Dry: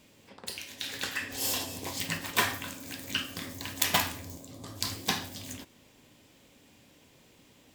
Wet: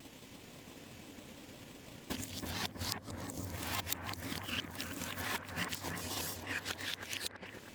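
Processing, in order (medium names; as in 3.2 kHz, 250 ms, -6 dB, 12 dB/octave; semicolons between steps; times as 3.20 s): reverse the whole clip; compression 4:1, threshold -48 dBFS, peak gain reduction 23 dB; transient shaper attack +8 dB, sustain -7 dB; bucket-brigade echo 323 ms, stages 4096, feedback 57%, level -4 dB; vibrato with a chosen wave square 5.9 Hz, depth 100 cents; trim +5.5 dB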